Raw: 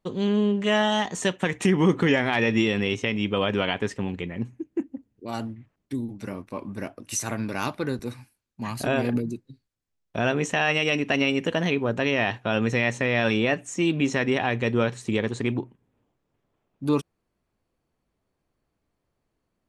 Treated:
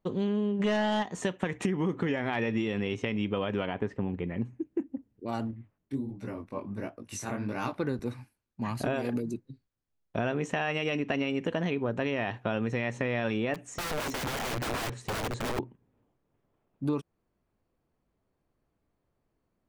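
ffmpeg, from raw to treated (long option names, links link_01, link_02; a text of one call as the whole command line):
ffmpeg -i in.wav -filter_complex "[0:a]asplit=3[link_01][link_02][link_03];[link_01]afade=type=out:start_time=0.59:duration=0.02[link_04];[link_02]aeval=exprs='0.282*sin(PI/2*1.78*val(0)/0.282)':channel_layout=same,afade=type=in:start_time=0.59:duration=0.02,afade=type=out:start_time=1.02:duration=0.02[link_05];[link_03]afade=type=in:start_time=1.02:duration=0.02[link_06];[link_04][link_05][link_06]amix=inputs=3:normalize=0,asettb=1/sr,asplit=3[link_07][link_08][link_09];[link_07]atrim=end=3.664[link_10];[link_08]atrim=start=3.66:end=4.28,asetpts=PTS-STARTPTS,afade=type=in:duration=0.004:curve=qsin,afade=type=out:start_time=0.616:duration=0.004:curve=qsin,lowpass=frequency=1400:poles=1[link_11];[link_09]atrim=start=4.276[link_12];[link_10][link_11]acrossfade=duration=0.004:curve1=hsin:curve2=qsin[link_13];[link_13][link_12]acrossfade=duration=0.004:curve1=qsin:curve2=hsin,asettb=1/sr,asplit=3[link_14][link_15][link_16];[link_14]atrim=end=5.514[link_17];[link_15]atrim=start=5.51:end=7.76,asetpts=PTS-STARTPTS,afade=type=in:duration=0.004:curve=qsin,afade=type=out:start_time=2.246:duration=0.004:curve=qsin,flanger=delay=16.5:depth=6.1:speed=1.4[link_18];[link_16]atrim=start=7.756[link_19];[link_17][link_18]acrossfade=duration=0.004:curve1=hsin:curve2=qsin[link_20];[link_20][link_19]acrossfade=duration=0.004:curve1=qsin:curve2=hsin,asettb=1/sr,asplit=3[link_21][link_22][link_23];[link_21]atrim=end=8.944[link_24];[link_22]atrim=start=8.94:end=9.34,asetpts=PTS-STARTPTS,afade=type=in:duration=0.004:curve=qsin,afade=type=out:start_time=0.396:duration=0.004:curve=qsin,bass=frequency=250:gain=-6,treble=frequency=4000:gain=9[link_25];[link_23]atrim=start=9.336[link_26];[link_24][link_25]acrossfade=duration=0.004:curve1=hsin:curve2=qsin[link_27];[link_27][link_26]acrossfade=duration=0.004:curve1=qsin:curve2=hsin,asettb=1/sr,asplit=3[link_28][link_29][link_30];[link_28]atrim=end=10.794[link_31];[link_29]atrim=start=10.79:end=11.41,asetpts=PTS-STARTPTS,afade=type=in:duration=0.004:curve=qsin,afade=type=out:start_time=0.616:duration=0.004:curve=qsin,lowpass=9100[link_32];[link_30]atrim=start=11.406[link_33];[link_31][link_32]acrossfade=duration=0.004:curve1=hsin:curve2=qsin[link_34];[link_34][link_33]acrossfade=duration=0.004:curve1=qsin:curve2=hsin,asettb=1/sr,asplit=3[link_35][link_36][link_37];[link_35]atrim=end=13.544[link_38];[link_36]atrim=start=13.54:end=15.59,asetpts=PTS-STARTPTS,afade=type=in:duration=0.004:curve=qsin,afade=type=out:start_time=2.046:duration=0.004:curve=qsin,aeval=exprs='(mod(17.8*val(0)+1,2)-1)/17.8':channel_layout=same[link_39];[link_37]atrim=start=15.586[link_40];[link_38][link_39]acrossfade=duration=0.004:curve1=hsin:curve2=qsin[link_41];[link_41][link_40]acrossfade=duration=0.004:curve1=qsin:curve2=hsin,highshelf=frequency=2700:gain=-9.5,acompressor=threshold=-26dB:ratio=6" out.wav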